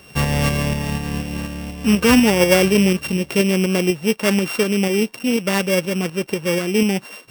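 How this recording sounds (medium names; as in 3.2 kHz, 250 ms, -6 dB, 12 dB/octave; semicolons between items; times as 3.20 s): a buzz of ramps at a fixed pitch in blocks of 16 samples; tremolo saw up 4.1 Hz, depth 40%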